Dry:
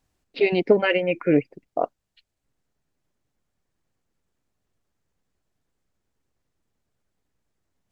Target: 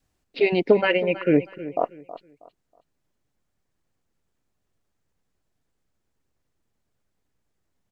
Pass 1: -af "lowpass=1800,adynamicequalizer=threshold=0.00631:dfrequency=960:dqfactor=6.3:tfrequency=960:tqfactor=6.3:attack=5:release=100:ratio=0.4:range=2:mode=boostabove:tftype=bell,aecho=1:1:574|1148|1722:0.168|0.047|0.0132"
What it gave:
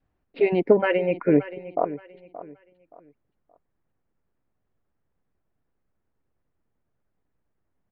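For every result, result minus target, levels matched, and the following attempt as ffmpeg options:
echo 254 ms late; 2,000 Hz band −3.5 dB
-af "lowpass=1800,adynamicequalizer=threshold=0.00631:dfrequency=960:dqfactor=6.3:tfrequency=960:tqfactor=6.3:attack=5:release=100:ratio=0.4:range=2:mode=boostabove:tftype=bell,aecho=1:1:320|640|960:0.168|0.047|0.0132"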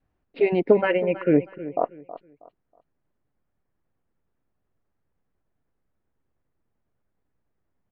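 2,000 Hz band −3.5 dB
-af "adynamicequalizer=threshold=0.00631:dfrequency=960:dqfactor=6.3:tfrequency=960:tqfactor=6.3:attack=5:release=100:ratio=0.4:range=2:mode=boostabove:tftype=bell,aecho=1:1:320|640|960:0.168|0.047|0.0132"

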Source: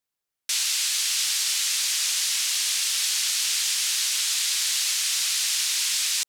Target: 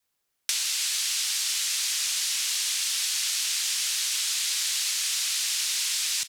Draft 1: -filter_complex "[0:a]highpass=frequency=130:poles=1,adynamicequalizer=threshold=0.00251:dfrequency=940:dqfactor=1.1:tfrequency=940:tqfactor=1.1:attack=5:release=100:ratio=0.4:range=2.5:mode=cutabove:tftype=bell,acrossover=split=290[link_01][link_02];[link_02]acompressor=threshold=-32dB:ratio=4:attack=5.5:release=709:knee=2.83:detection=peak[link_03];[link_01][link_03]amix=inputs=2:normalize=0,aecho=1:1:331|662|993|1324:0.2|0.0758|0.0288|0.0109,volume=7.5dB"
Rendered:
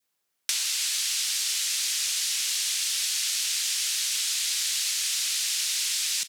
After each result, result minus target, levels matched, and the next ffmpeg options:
250 Hz band +2.5 dB; 125 Hz band −2.0 dB
-filter_complex "[0:a]highpass=frequency=130:poles=1,adynamicequalizer=threshold=0.00251:dfrequency=330:dqfactor=1.1:tfrequency=330:tqfactor=1.1:attack=5:release=100:ratio=0.4:range=2.5:mode=cutabove:tftype=bell,acrossover=split=290[link_01][link_02];[link_02]acompressor=threshold=-32dB:ratio=4:attack=5.5:release=709:knee=2.83:detection=peak[link_03];[link_01][link_03]amix=inputs=2:normalize=0,aecho=1:1:331|662|993|1324:0.2|0.0758|0.0288|0.0109,volume=7.5dB"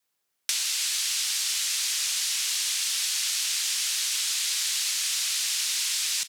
125 Hz band −3.0 dB
-filter_complex "[0:a]adynamicequalizer=threshold=0.00251:dfrequency=330:dqfactor=1.1:tfrequency=330:tqfactor=1.1:attack=5:release=100:ratio=0.4:range=2.5:mode=cutabove:tftype=bell,acrossover=split=290[link_01][link_02];[link_02]acompressor=threshold=-32dB:ratio=4:attack=5.5:release=709:knee=2.83:detection=peak[link_03];[link_01][link_03]amix=inputs=2:normalize=0,aecho=1:1:331|662|993|1324:0.2|0.0758|0.0288|0.0109,volume=7.5dB"

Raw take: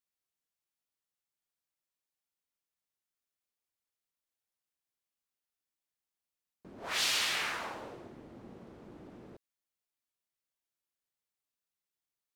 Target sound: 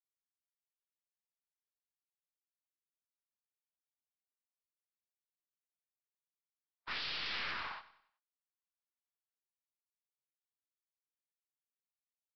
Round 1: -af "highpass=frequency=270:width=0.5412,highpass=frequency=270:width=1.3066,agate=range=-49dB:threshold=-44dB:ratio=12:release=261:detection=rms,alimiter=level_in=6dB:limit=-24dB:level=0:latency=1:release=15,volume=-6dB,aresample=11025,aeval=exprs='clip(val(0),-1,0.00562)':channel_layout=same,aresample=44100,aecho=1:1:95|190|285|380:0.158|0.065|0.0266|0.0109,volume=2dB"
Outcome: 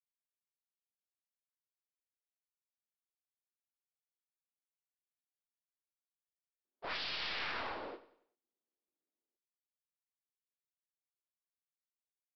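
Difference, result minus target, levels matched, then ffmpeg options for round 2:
250 Hz band +6.0 dB
-af "highpass=frequency=1000:width=0.5412,highpass=frequency=1000:width=1.3066,agate=range=-49dB:threshold=-44dB:ratio=12:release=261:detection=rms,alimiter=level_in=6dB:limit=-24dB:level=0:latency=1:release=15,volume=-6dB,aresample=11025,aeval=exprs='clip(val(0),-1,0.00562)':channel_layout=same,aresample=44100,aecho=1:1:95|190|285|380:0.158|0.065|0.0266|0.0109,volume=2dB"

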